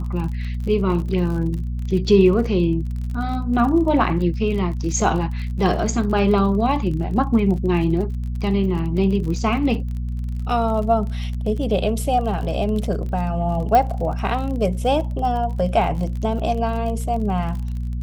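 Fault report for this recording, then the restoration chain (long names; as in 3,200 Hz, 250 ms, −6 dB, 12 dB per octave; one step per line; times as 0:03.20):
surface crackle 40 per second −29 dBFS
mains hum 60 Hz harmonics 4 −25 dBFS
0:13.75: click −7 dBFS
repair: click removal
hum removal 60 Hz, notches 4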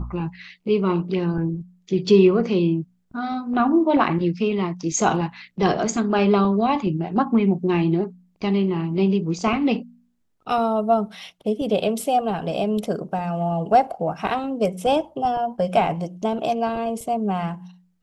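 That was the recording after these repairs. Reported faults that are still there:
none of them is left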